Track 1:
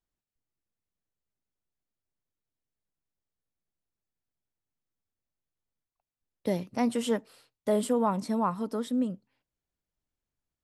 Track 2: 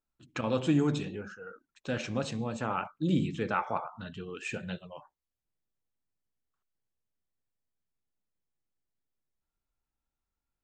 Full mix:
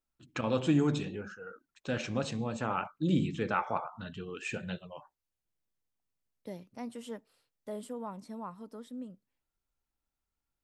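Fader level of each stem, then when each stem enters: -14.0 dB, -0.5 dB; 0.00 s, 0.00 s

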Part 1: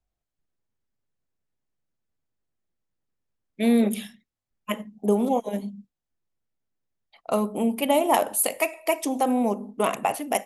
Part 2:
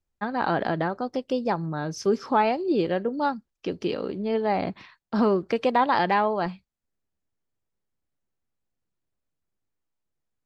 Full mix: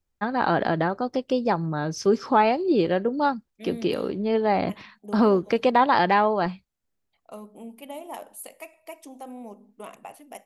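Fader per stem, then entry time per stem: -17.0 dB, +2.5 dB; 0.00 s, 0.00 s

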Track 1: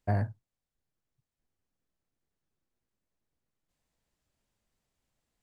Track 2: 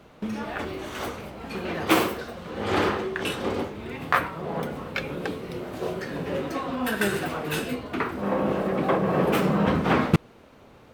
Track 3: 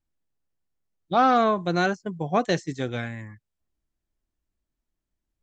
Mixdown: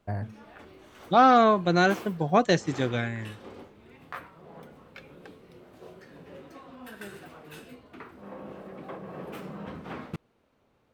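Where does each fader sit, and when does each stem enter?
-4.0 dB, -17.5 dB, +1.5 dB; 0.00 s, 0.00 s, 0.00 s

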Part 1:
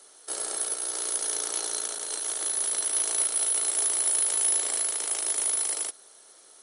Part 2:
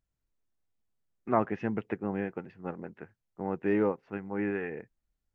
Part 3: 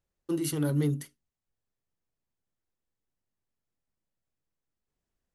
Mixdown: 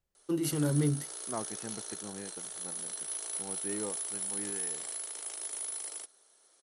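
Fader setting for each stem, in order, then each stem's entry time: -11.5 dB, -11.5 dB, -1.0 dB; 0.15 s, 0.00 s, 0.00 s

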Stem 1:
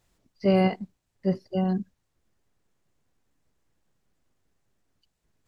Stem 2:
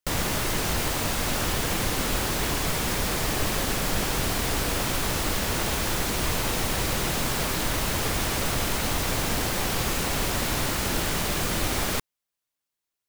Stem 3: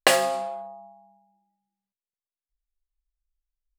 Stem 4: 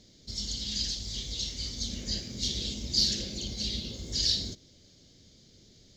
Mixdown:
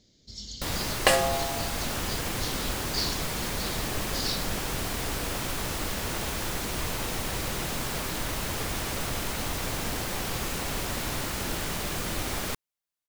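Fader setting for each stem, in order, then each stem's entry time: mute, -5.0 dB, -2.5 dB, -5.5 dB; mute, 0.55 s, 1.00 s, 0.00 s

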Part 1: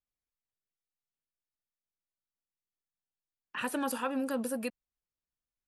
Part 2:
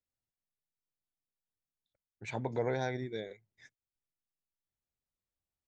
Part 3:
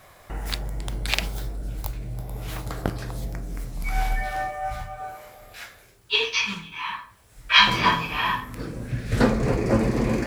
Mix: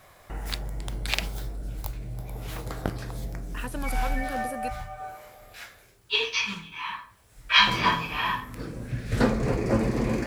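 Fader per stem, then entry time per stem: -2.5 dB, -14.0 dB, -3.0 dB; 0.00 s, 0.00 s, 0.00 s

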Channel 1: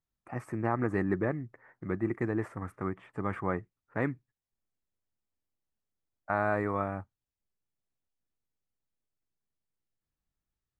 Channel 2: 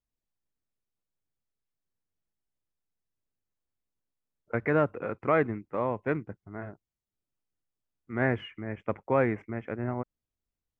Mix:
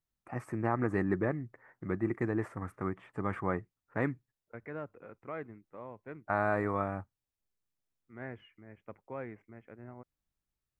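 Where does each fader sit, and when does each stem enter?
-1.0 dB, -16.5 dB; 0.00 s, 0.00 s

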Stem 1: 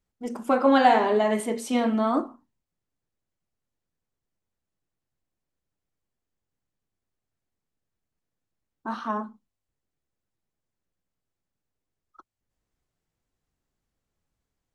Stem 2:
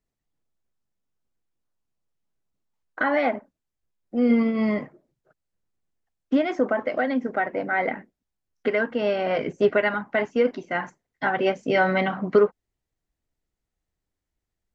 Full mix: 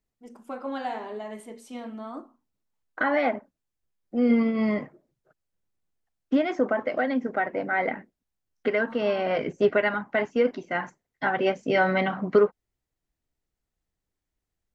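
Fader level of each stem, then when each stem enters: -14.0 dB, -1.5 dB; 0.00 s, 0.00 s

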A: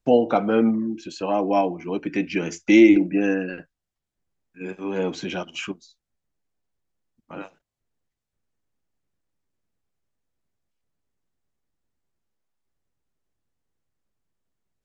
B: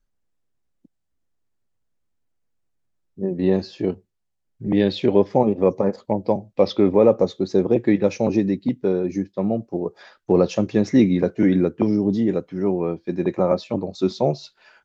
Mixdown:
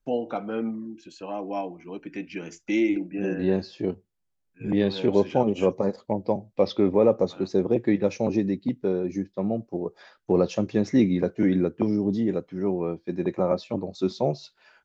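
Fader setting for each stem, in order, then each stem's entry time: -10.0 dB, -4.5 dB; 0.00 s, 0.00 s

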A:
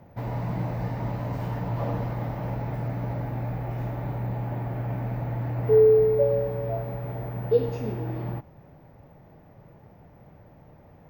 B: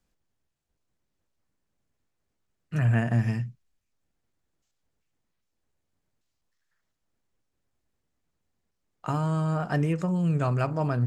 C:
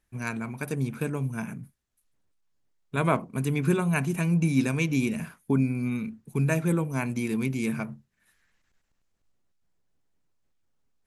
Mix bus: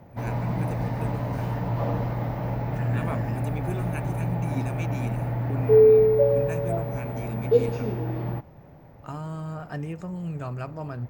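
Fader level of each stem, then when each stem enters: +2.0 dB, -7.5 dB, -10.0 dB; 0.00 s, 0.00 s, 0.00 s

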